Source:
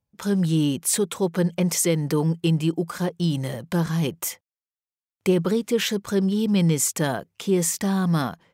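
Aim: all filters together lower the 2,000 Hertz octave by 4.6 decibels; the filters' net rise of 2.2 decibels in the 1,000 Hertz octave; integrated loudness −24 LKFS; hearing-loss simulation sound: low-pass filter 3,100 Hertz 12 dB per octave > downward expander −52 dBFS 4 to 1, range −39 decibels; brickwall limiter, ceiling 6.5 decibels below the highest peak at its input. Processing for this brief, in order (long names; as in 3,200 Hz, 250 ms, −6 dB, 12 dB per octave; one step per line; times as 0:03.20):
parametric band 1,000 Hz +4.5 dB
parametric band 2,000 Hz −7 dB
brickwall limiter −16 dBFS
low-pass filter 3,100 Hz 12 dB per octave
downward expander −52 dBFS 4 to 1, range −39 dB
level +2 dB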